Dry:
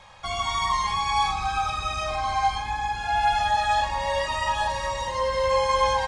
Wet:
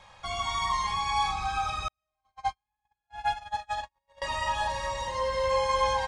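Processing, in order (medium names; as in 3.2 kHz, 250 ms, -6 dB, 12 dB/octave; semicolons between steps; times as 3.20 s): 1.88–4.22 s: gate -20 dBFS, range -54 dB; trim -4 dB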